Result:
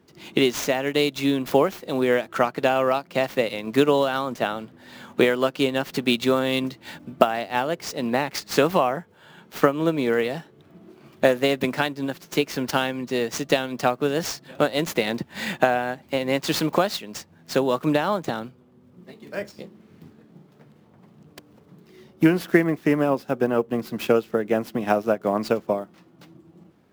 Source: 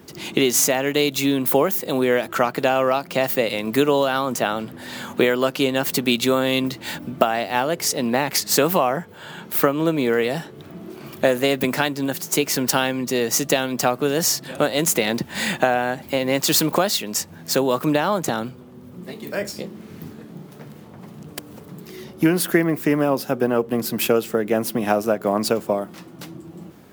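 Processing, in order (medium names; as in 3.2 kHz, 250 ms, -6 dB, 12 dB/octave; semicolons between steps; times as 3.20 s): median filter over 5 samples; upward expansion 1.5:1, over -39 dBFS; trim +1 dB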